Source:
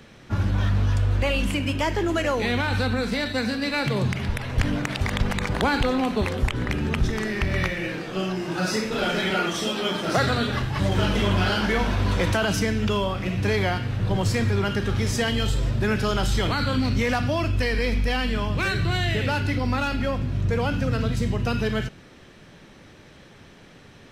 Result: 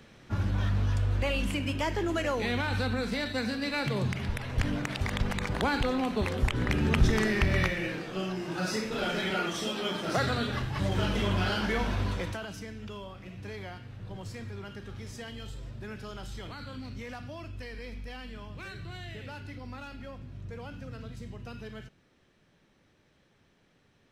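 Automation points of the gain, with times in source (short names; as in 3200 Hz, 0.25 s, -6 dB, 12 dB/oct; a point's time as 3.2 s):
6.12 s -6 dB
7.15 s +1 dB
8.18 s -6.5 dB
12.01 s -6.5 dB
12.52 s -18 dB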